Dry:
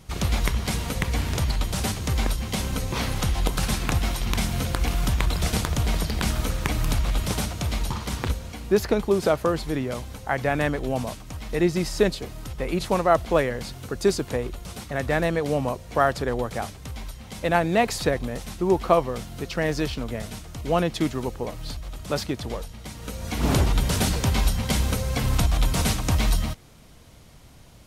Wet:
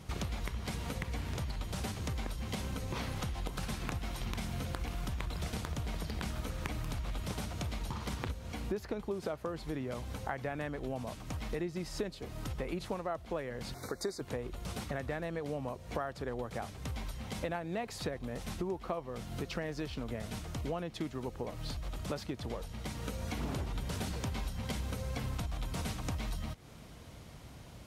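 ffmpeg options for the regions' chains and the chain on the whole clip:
ffmpeg -i in.wav -filter_complex "[0:a]asettb=1/sr,asplit=3[link_01][link_02][link_03];[link_01]atrim=end=13.744[link_04];[link_02]atrim=start=13.74:end=14.21,asetpts=PTS-STARTPTS,afade=type=in:duration=0.004:curve=qsin,afade=type=out:start_time=0.466:duration=0.004:curve=qsin,asuperstop=centerf=2900:order=12:qfactor=2.2,bass=frequency=250:gain=-10,treble=frequency=4000:gain=2[link_05];[link_03]atrim=start=14.206[link_06];[link_04][link_05]acrossfade=duration=0.004:curve1=hsin:curve2=qsin[link_07];[link_07][link_06]acrossfade=duration=0.004:curve1=qsin:curve2=hsin,highpass=44,highshelf=frequency=4100:gain=-5.5,acompressor=threshold=-35dB:ratio=6" out.wav

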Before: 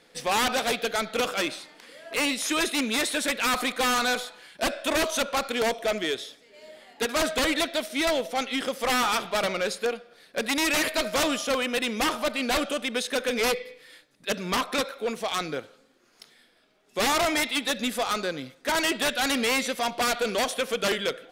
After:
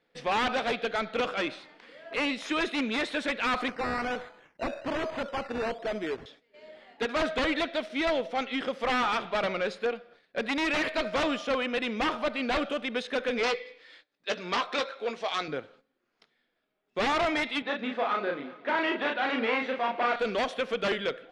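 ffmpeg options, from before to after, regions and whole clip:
ffmpeg -i in.wav -filter_complex "[0:a]asettb=1/sr,asplit=3[link_01][link_02][link_03];[link_01]atrim=end=3.684[link_04];[link_02]atrim=start=3.68:end=6.26,asetpts=PTS-STARTPTS,afade=type=in:duration=0.004:curve=qsin,afade=type=out:start_time=2.576:duration=0.004:curve=qsin,highshelf=frequency=2300:gain=-11,acrusher=samples=11:mix=1:aa=0.000001:lfo=1:lforange=6.6:lforate=1.2,aeval=exprs='0.0631*(abs(mod(val(0)/0.0631+3,4)-2)-1)':channel_layout=same[link_05];[link_03]atrim=start=6.256[link_06];[link_04][link_05]acrossfade=duration=0.004:curve1=hsin:curve2=qsin[link_07];[link_07][link_06]acrossfade=duration=0.004:curve1=qsin:curve2=hsin,asettb=1/sr,asplit=3[link_08][link_09][link_10];[link_08]atrim=end=13.434[link_11];[link_09]atrim=start=13.43:end=15.48,asetpts=PTS-STARTPTS,afade=type=in:duration=0.004:curve=qsin,afade=type=out:start_time=2.046:duration=0.004:curve=qsin,lowpass=5600,bass=frequency=250:gain=-12,treble=frequency=4000:gain=10,asplit=2[link_12][link_13];[link_13]adelay=17,volume=-10.5dB[link_14];[link_12][link_14]amix=inputs=2:normalize=0,atrim=end_sample=90405[link_15];[link_10]atrim=start=15.476[link_16];[link_11][link_15]acrossfade=duration=0.004:curve1=hsin:curve2=qsin[link_17];[link_17][link_16]acrossfade=duration=0.004:curve1=qsin:curve2=hsin,asettb=1/sr,asplit=3[link_18][link_19][link_20];[link_18]atrim=end=17.624[link_21];[link_19]atrim=start=17.62:end=20.16,asetpts=PTS-STARTPTS,afade=type=in:duration=0.004:curve=qsin,afade=type=out:start_time=2.536:duration=0.004:curve=qsin,highpass=260,lowpass=2600,asplit=2[link_22][link_23];[link_23]adelay=35,volume=-3dB[link_24];[link_22][link_24]amix=inputs=2:normalize=0,atrim=end_sample=112014,aecho=1:1:205|410|615|820:0.126|0.0642|0.0327|0.0167,atrim=end_sample=112014[link_25];[link_20]atrim=start=20.156[link_26];[link_21][link_25]acrossfade=duration=0.004:curve1=hsin:curve2=qsin[link_27];[link_27][link_26]acrossfade=duration=0.004:curve1=qsin:curve2=hsin,lowpass=3100,agate=range=-12dB:threshold=-53dB:ratio=16:detection=peak,volume=-2dB" out.wav

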